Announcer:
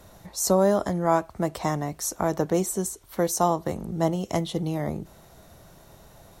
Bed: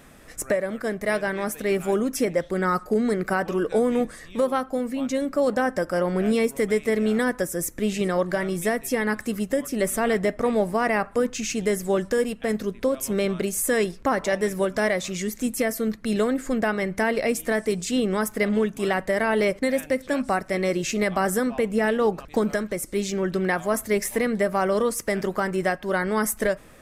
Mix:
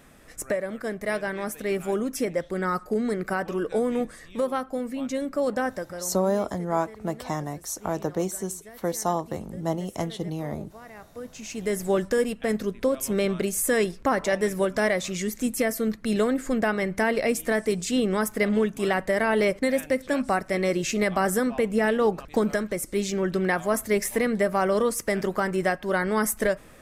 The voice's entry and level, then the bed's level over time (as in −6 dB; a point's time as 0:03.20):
5.65 s, −3.5 dB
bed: 0:05.66 −3.5 dB
0:06.29 −22.5 dB
0:10.94 −22.5 dB
0:11.82 −0.5 dB